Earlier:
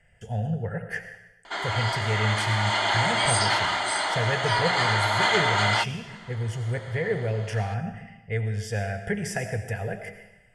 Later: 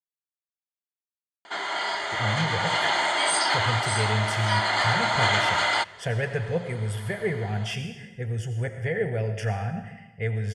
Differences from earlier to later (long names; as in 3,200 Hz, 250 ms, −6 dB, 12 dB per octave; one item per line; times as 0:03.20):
speech: entry +1.90 s
master: add high-pass filter 54 Hz